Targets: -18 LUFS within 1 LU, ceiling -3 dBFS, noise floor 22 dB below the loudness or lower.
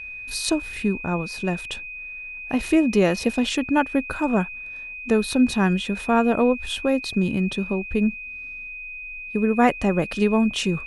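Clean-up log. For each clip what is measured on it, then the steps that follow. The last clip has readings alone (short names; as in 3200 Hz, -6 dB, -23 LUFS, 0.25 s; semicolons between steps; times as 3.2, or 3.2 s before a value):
steady tone 2500 Hz; tone level -33 dBFS; loudness -23.0 LUFS; peak -4.0 dBFS; loudness target -18.0 LUFS
-> notch 2500 Hz, Q 30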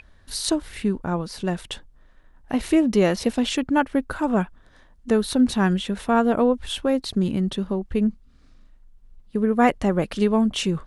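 steady tone none; loudness -23.0 LUFS; peak -4.0 dBFS; loudness target -18.0 LUFS
-> gain +5 dB; limiter -3 dBFS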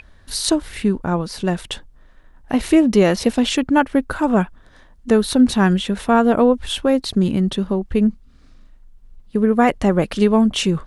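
loudness -18.0 LUFS; peak -3.0 dBFS; noise floor -49 dBFS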